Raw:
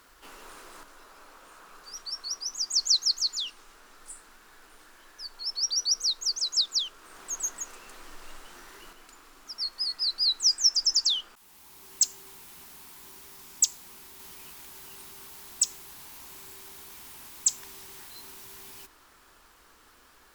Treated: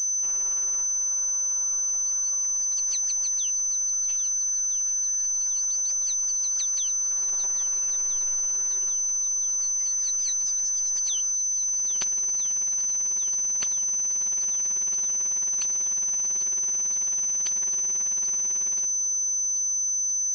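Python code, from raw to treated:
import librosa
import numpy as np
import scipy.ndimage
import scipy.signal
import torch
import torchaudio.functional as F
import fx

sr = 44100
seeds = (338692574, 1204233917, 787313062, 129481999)

y = fx.robotise(x, sr, hz=191.0)
y = fx.echo_swing(y, sr, ms=1315, ratio=1.5, feedback_pct=57, wet_db=-13)
y = fx.pwm(y, sr, carrier_hz=6100.0)
y = y * 10.0 ** (1.0 / 20.0)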